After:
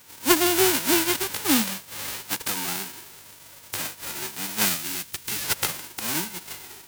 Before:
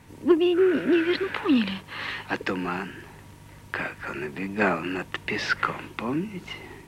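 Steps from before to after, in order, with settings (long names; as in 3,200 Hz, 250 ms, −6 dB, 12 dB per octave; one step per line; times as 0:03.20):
spectral envelope flattened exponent 0.1
0:04.65–0:05.44: parametric band 700 Hz −7.5 dB 2 octaves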